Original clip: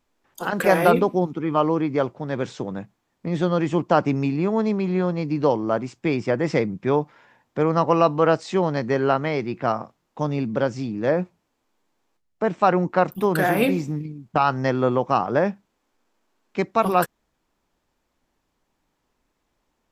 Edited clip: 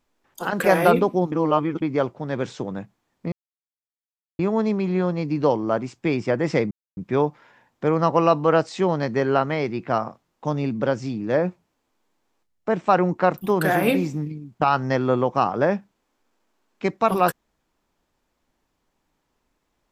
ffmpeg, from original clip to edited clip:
-filter_complex "[0:a]asplit=6[a][b][c][d][e][f];[a]atrim=end=1.322[g];[b]atrim=start=1.318:end=1.822,asetpts=PTS-STARTPTS,areverse[h];[c]atrim=start=1.818:end=3.32,asetpts=PTS-STARTPTS,afade=t=out:st=1.498:d=0.004:c=hsin[i];[d]atrim=start=3.32:end=4.39,asetpts=PTS-STARTPTS,volume=0[j];[e]atrim=start=4.39:end=6.71,asetpts=PTS-STARTPTS,afade=t=in:d=0.004:c=hsin,afade=t=out:st=2.316:d=0.004:c=hsin,apad=pad_dur=0.26[k];[f]atrim=start=6.71,asetpts=PTS-STARTPTS,afade=t=in:d=0.004:c=hsin[l];[g][h]acrossfade=d=0.004:c1=hsin:c2=hsin[m];[i][j][k][l]concat=n=4:v=0:a=1[n];[m][n]acrossfade=d=0.004:c1=hsin:c2=hsin"

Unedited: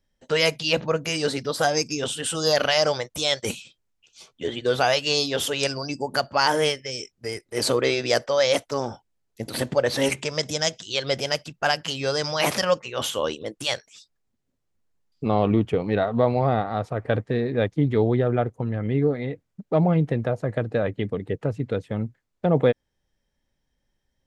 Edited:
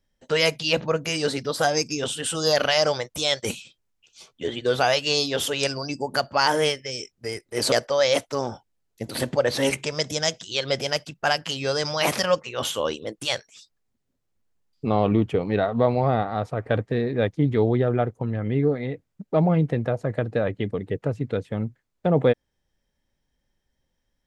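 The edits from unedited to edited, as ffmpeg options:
-filter_complex "[0:a]asplit=2[a][b];[a]atrim=end=7.722[c];[b]atrim=start=8.108[d];[c][d]acrossfade=d=0.004:c1=hsin:c2=hsin"

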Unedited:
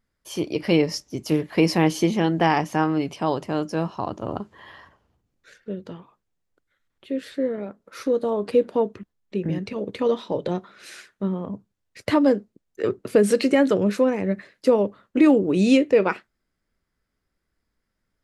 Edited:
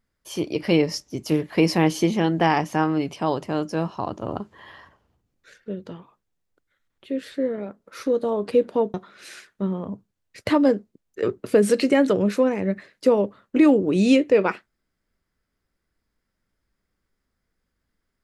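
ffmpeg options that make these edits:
-filter_complex "[0:a]asplit=2[a][b];[a]atrim=end=8.942[c];[b]atrim=start=10.548[d];[c][d]acrossfade=d=0.004:c1=hsin:c2=hsin"

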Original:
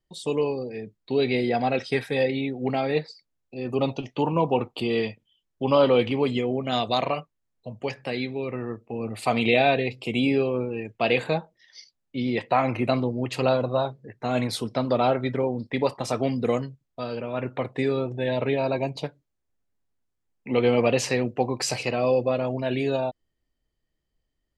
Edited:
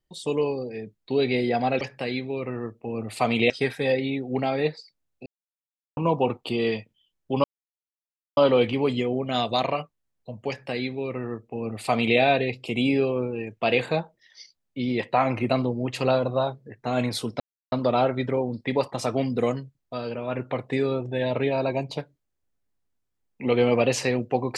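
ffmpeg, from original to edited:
-filter_complex "[0:a]asplit=7[a][b][c][d][e][f][g];[a]atrim=end=1.812[h];[b]atrim=start=7.868:end=9.562[i];[c]atrim=start=1.808:end=3.57,asetpts=PTS-STARTPTS,afade=t=out:st=1.758:d=0.004:c=hsin[j];[d]atrim=start=3.57:end=4.28,asetpts=PTS-STARTPTS,volume=0[k];[e]atrim=start=4.28:end=5.75,asetpts=PTS-STARTPTS,afade=t=in:d=0.004:c=hsin,afade=t=out:st=1.466:d=0.004:c=hsin,apad=pad_dur=0.93[l];[f]atrim=start=5.75:end=14.78,asetpts=PTS-STARTPTS,afade=t=in:d=0.004:c=hsin,afade=t=out:st=9.026:d=0.004:c=hsin,apad=pad_dur=0.32[m];[g]atrim=start=14.78,asetpts=PTS-STARTPTS,afade=t=in:d=0.004:c=hsin[n];[h][i]acrossfade=d=0.004:c1=hsin:c2=hsin[o];[j][k][l][m][n]concat=n=5:v=0:a=1[p];[o][p]acrossfade=d=0.004:c1=hsin:c2=hsin"

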